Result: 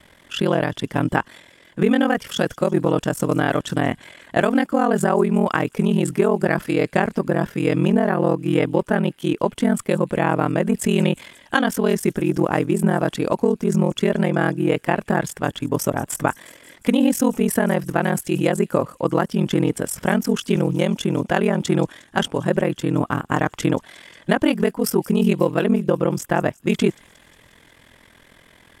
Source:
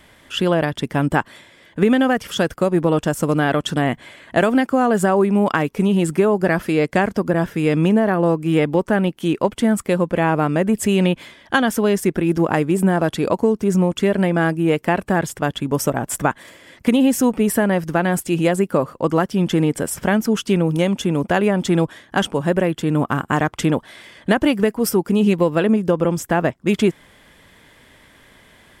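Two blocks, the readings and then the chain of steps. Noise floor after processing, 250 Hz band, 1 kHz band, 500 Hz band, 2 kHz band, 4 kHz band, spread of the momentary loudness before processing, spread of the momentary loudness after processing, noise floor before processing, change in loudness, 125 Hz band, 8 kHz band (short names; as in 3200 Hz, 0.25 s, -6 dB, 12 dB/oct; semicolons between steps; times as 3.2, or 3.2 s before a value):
-53 dBFS, -2.0 dB, -2.0 dB, -2.0 dB, -2.0 dB, -2.0 dB, 5 LU, 5 LU, -51 dBFS, -2.0 dB, -1.5 dB, -2.0 dB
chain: ring modulator 21 Hz; thin delay 0.179 s, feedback 68%, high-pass 5600 Hz, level -17 dB; gain +1 dB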